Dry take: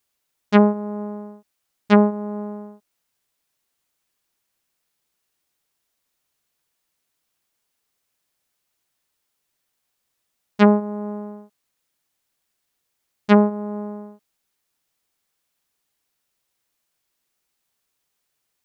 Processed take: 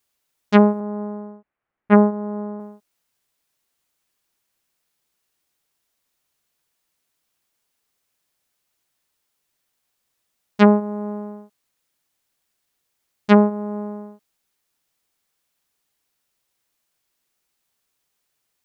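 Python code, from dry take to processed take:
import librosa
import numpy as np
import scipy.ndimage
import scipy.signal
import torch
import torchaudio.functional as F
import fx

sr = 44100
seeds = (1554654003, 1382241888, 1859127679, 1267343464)

y = fx.lowpass(x, sr, hz=2100.0, slope=24, at=(0.8, 2.6))
y = y * librosa.db_to_amplitude(1.0)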